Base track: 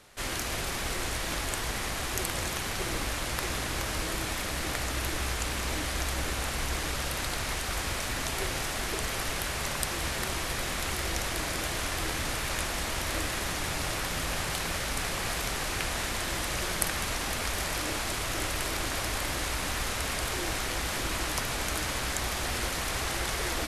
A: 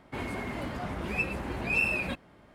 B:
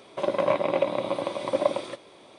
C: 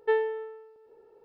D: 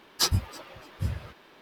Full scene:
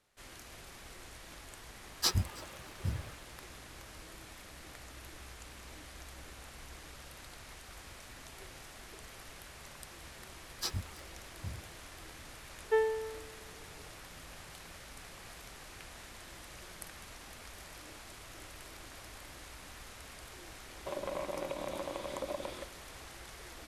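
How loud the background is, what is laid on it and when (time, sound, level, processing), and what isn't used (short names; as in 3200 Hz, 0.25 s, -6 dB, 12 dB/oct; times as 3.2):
base track -18.5 dB
1.83 add D -5.5 dB
10.42 add D -12.5 dB
12.64 add C -3.5 dB
20.69 add B -8.5 dB + compressor, threshold -25 dBFS
not used: A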